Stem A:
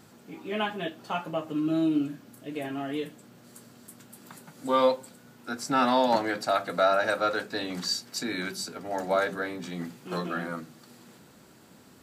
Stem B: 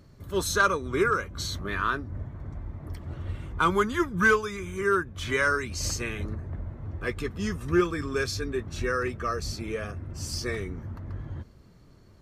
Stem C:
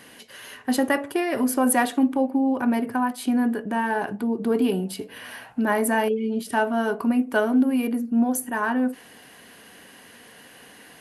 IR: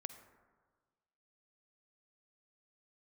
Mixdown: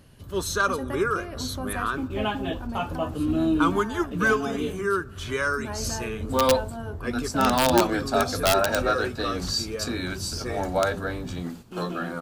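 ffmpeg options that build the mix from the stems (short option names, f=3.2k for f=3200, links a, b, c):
-filter_complex "[0:a]agate=range=-10dB:threshold=-44dB:ratio=16:detection=peak,lowshelf=f=68:g=3,aeval=exprs='(mod(4.73*val(0)+1,2)-1)/4.73':c=same,adelay=1650,volume=2dB[a];[1:a]volume=-2.5dB,asplit=2[b][c];[c]volume=-7dB[d];[2:a]volume=-13dB[e];[3:a]atrim=start_sample=2205[f];[d][f]afir=irnorm=-1:irlink=0[g];[a][b][e][g]amix=inputs=4:normalize=0,equalizer=f=2k:w=3.9:g=-7"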